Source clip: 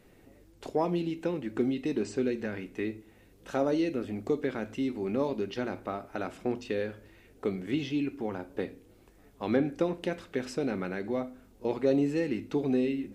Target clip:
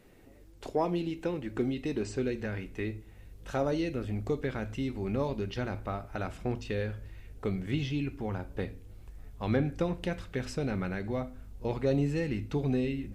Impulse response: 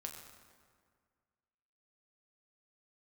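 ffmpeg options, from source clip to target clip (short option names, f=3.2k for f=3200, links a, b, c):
-af "asubboost=boost=8.5:cutoff=100"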